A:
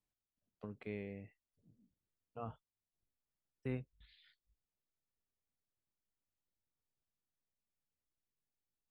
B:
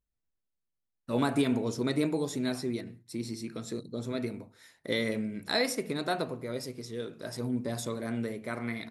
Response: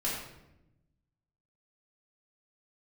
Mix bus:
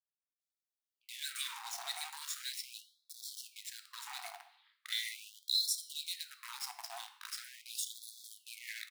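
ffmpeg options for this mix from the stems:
-filter_complex "[0:a]aeval=exprs='val(0)*sin(2*PI*180*n/s)':channel_layout=same,adelay=400,volume=-2.5dB,asplit=2[link_01][link_02];[link_02]volume=-7.5dB[link_03];[1:a]adynamicequalizer=threshold=0.00282:dfrequency=130:dqfactor=6.4:tfrequency=130:tqfactor=6.4:attack=5:release=100:ratio=0.375:range=2:mode=cutabove:tftype=bell,acrossover=split=150|3000[link_04][link_05][link_06];[link_05]acompressor=threshold=-44dB:ratio=8[link_07];[link_04][link_07][link_06]amix=inputs=3:normalize=0,aeval=exprs='val(0)*gte(abs(val(0)),0.0106)':channel_layout=same,volume=1dB,asplit=2[link_08][link_09];[link_09]volume=-11dB[link_10];[2:a]atrim=start_sample=2205[link_11];[link_03][link_10]amix=inputs=2:normalize=0[link_12];[link_12][link_11]afir=irnorm=-1:irlink=0[link_13];[link_01][link_08][link_13]amix=inputs=3:normalize=0,equalizer=frequency=530:width_type=o:width=1.1:gain=11.5,afftfilt=real='re*gte(b*sr/1024,660*pow(3400/660,0.5+0.5*sin(2*PI*0.4*pts/sr)))':imag='im*gte(b*sr/1024,660*pow(3400/660,0.5+0.5*sin(2*PI*0.4*pts/sr)))':win_size=1024:overlap=0.75"

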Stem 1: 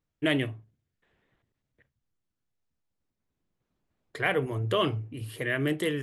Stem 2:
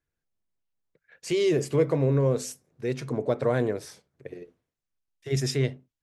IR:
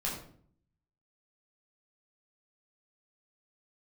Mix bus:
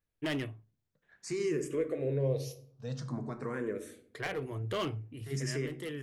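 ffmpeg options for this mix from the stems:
-filter_complex "[0:a]asoftclip=type=hard:threshold=-22.5dB,volume=-6.5dB[link_01];[1:a]alimiter=limit=-17dB:level=0:latency=1:release=236,asplit=2[link_02][link_03];[link_03]afreqshift=0.5[link_04];[link_02][link_04]amix=inputs=2:normalize=1,volume=-6dB,asplit=3[link_05][link_06][link_07];[link_06]volume=-10.5dB[link_08];[link_07]apad=whole_len=265857[link_09];[link_01][link_09]sidechaincompress=threshold=-40dB:ratio=8:attack=7.1:release=632[link_10];[2:a]atrim=start_sample=2205[link_11];[link_08][link_11]afir=irnorm=-1:irlink=0[link_12];[link_10][link_05][link_12]amix=inputs=3:normalize=0"

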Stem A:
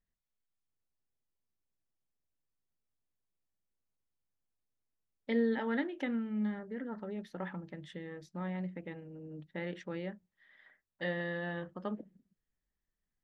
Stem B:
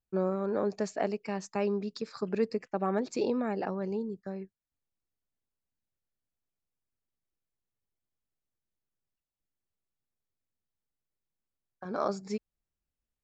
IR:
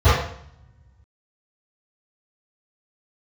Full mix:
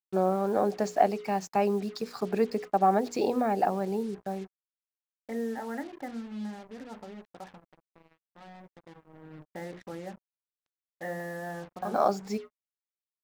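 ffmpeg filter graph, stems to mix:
-filter_complex "[0:a]lowpass=frequency=1900:width=0.5412,lowpass=frequency=1900:width=1.3066,volume=8.5dB,afade=type=out:start_time=6.96:duration=0.74:silence=0.354813,afade=type=in:start_time=8.68:duration=0.78:silence=0.266073[link_01];[1:a]volume=2.5dB[link_02];[link_01][link_02]amix=inputs=2:normalize=0,equalizer=frequency=750:width_type=o:width=0.32:gain=12,bandreject=frequency=60:width_type=h:width=6,bandreject=frequency=120:width_type=h:width=6,bandreject=frequency=180:width_type=h:width=6,bandreject=frequency=240:width_type=h:width=6,bandreject=frequency=300:width_type=h:width=6,bandreject=frequency=360:width_type=h:width=6,bandreject=frequency=420:width_type=h:width=6,bandreject=frequency=480:width_type=h:width=6,bandreject=frequency=540:width_type=h:width=6,acrusher=bits=7:mix=0:aa=0.5"

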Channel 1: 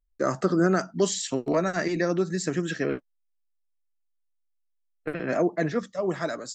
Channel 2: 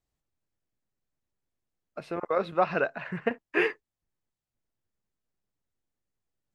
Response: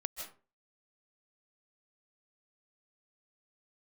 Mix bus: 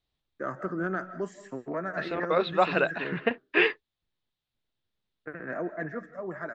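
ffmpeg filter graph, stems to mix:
-filter_complex "[0:a]highpass=53,highshelf=frequency=2500:width_type=q:width=3:gain=-14,acontrast=21,adelay=200,volume=-18dB,asplit=2[link_01][link_02];[link_02]volume=-5.5dB[link_03];[1:a]lowpass=frequency=3700:width_type=q:width=3.9,volume=1dB[link_04];[2:a]atrim=start_sample=2205[link_05];[link_03][link_05]afir=irnorm=-1:irlink=0[link_06];[link_01][link_04][link_06]amix=inputs=3:normalize=0"

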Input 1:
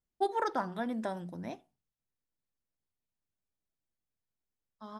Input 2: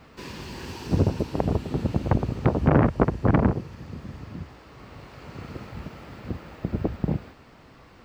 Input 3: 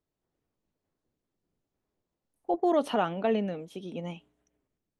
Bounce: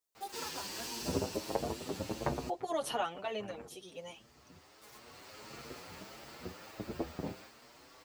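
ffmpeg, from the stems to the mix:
ffmpeg -i stem1.wav -i stem2.wav -i stem3.wav -filter_complex "[0:a]aeval=exprs='val(0)*gte(abs(val(0)),0.01)':channel_layout=same,volume=-9.5dB[link_01];[1:a]flanger=delay=8.5:depth=8.9:regen=60:speed=0.61:shape=triangular,adelay=150,volume=1dB[link_02];[2:a]equalizer=frequency=260:width_type=o:width=1.4:gain=-6,volume=-2.5dB,asplit=2[link_03][link_04];[link_04]apad=whole_len=361615[link_05];[link_02][link_05]sidechaincompress=threshold=-45dB:ratio=16:attack=5:release=1340[link_06];[link_01][link_06][link_03]amix=inputs=3:normalize=0,bass=frequency=250:gain=-13,treble=frequency=4000:gain=14,asplit=2[link_07][link_08];[link_08]adelay=7.4,afreqshift=1.5[link_09];[link_07][link_09]amix=inputs=2:normalize=1" out.wav

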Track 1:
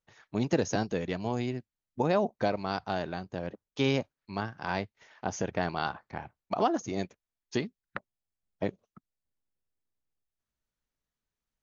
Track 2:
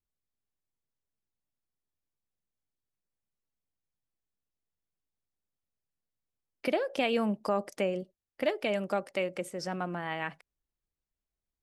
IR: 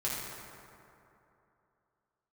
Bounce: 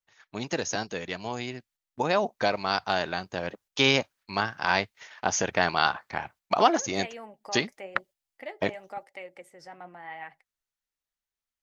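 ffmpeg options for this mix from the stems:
-filter_complex "[0:a]agate=range=-7dB:threshold=-57dB:ratio=16:detection=peak,tiltshelf=frequency=670:gain=-7,dynaudnorm=framelen=370:gausssize=13:maxgain=7.5dB,volume=-1dB[link_01];[1:a]equalizer=frequency=200:width_type=o:width=0.33:gain=-11,equalizer=frequency=800:width_type=o:width=0.33:gain=11,equalizer=frequency=2000:width_type=o:width=0.33:gain=11,flanger=delay=0.9:depth=6.9:regen=65:speed=0.98:shape=triangular,volume=-8.5dB[link_02];[link_01][link_02]amix=inputs=2:normalize=0"

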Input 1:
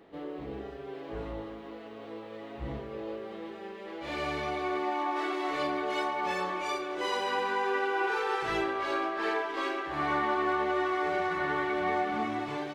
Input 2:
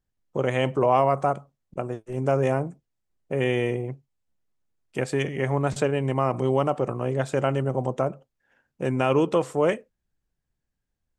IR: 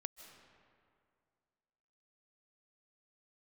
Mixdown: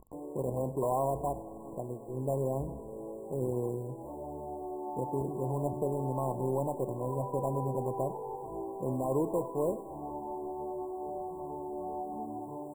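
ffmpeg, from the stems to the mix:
-filter_complex "[0:a]acrusher=bits=7:mix=0:aa=0.000001,asoftclip=type=tanh:threshold=-25.5dB,volume=-5dB[link_01];[1:a]lowpass=2300,acrusher=samples=17:mix=1:aa=0.000001:lfo=1:lforange=10.2:lforate=2.7,asoftclip=type=tanh:threshold=-11.5dB,volume=-10dB,asplit=3[link_02][link_03][link_04];[link_03]volume=-6dB[link_05];[link_04]volume=-14dB[link_06];[2:a]atrim=start_sample=2205[link_07];[link_05][link_07]afir=irnorm=-1:irlink=0[link_08];[link_06]aecho=0:1:97:1[link_09];[link_01][link_02][link_08][link_09]amix=inputs=4:normalize=0,acompressor=mode=upward:threshold=-37dB:ratio=2.5,afftfilt=real='re*(1-between(b*sr/4096,1100,7200))':imag='im*(1-between(b*sr/4096,1100,7200))':win_size=4096:overlap=0.75,highshelf=frequency=4500:gain=-10"

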